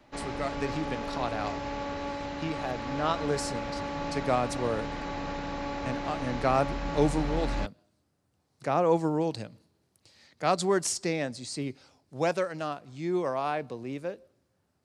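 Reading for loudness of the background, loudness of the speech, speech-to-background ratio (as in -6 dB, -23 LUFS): -35.0 LUFS, -31.0 LUFS, 4.0 dB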